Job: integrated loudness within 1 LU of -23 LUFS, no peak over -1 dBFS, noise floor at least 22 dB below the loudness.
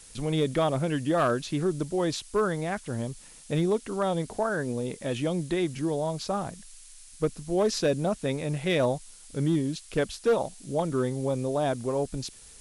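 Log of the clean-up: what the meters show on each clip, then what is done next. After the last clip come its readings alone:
clipped 0.5%; flat tops at -17.5 dBFS; noise floor -50 dBFS; noise floor target -51 dBFS; loudness -28.5 LUFS; peak -17.5 dBFS; loudness target -23.0 LUFS
-> clip repair -17.5 dBFS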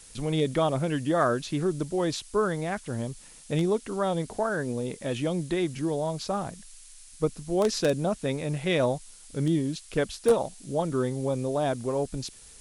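clipped 0.0%; noise floor -50 dBFS; noise floor target -51 dBFS
-> noise print and reduce 6 dB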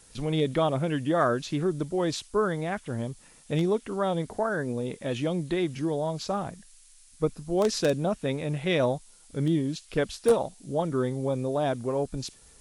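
noise floor -55 dBFS; loudness -28.5 LUFS; peak -9.0 dBFS; loudness target -23.0 LUFS
-> gain +5.5 dB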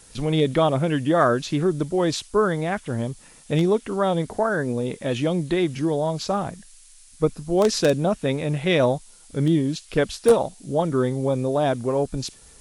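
loudness -23.0 LUFS; peak -3.5 dBFS; noise floor -50 dBFS

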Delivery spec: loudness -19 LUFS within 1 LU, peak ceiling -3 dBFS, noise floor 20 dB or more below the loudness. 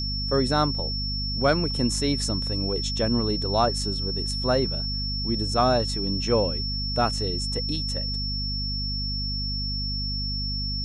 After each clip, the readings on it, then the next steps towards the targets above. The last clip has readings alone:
hum 50 Hz; harmonics up to 250 Hz; hum level -28 dBFS; steady tone 5400 Hz; tone level -29 dBFS; loudness -25.0 LUFS; peak -8.5 dBFS; loudness target -19.0 LUFS
-> de-hum 50 Hz, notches 5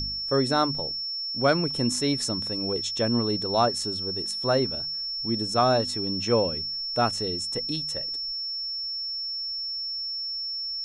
hum none; steady tone 5400 Hz; tone level -29 dBFS
-> notch 5400 Hz, Q 30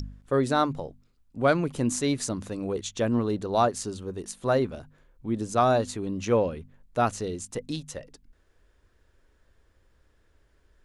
steady tone none; loudness -27.5 LUFS; peak -9.5 dBFS; loudness target -19.0 LUFS
-> gain +8.5 dB; limiter -3 dBFS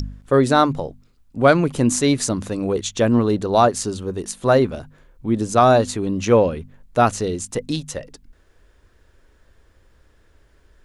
loudness -19.0 LUFS; peak -3.0 dBFS; noise floor -57 dBFS

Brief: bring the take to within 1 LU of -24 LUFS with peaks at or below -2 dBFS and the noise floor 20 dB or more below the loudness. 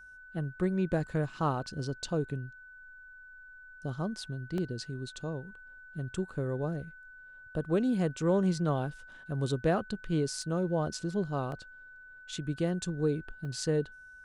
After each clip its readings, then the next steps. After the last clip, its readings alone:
dropouts 4; longest dropout 1.3 ms; steady tone 1500 Hz; tone level -49 dBFS; loudness -33.0 LUFS; peak -16.5 dBFS; loudness target -24.0 LUFS
-> interpolate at 4.58/10.42/11.52/13.45, 1.3 ms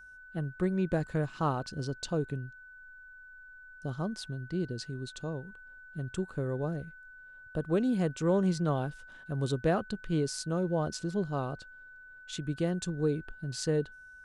dropouts 0; steady tone 1500 Hz; tone level -49 dBFS
-> notch 1500 Hz, Q 30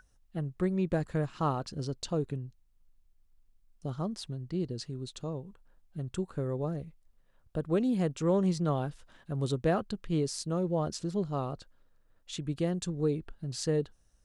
steady tone none; loudness -33.0 LUFS; peak -16.5 dBFS; loudness target -24.0 LUFS
-> gain +9 dB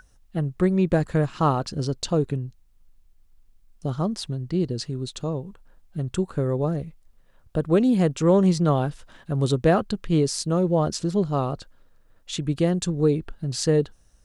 loudness -24.0 LUFS; peak -7.5 dBFS; noise floor -58 dBFS

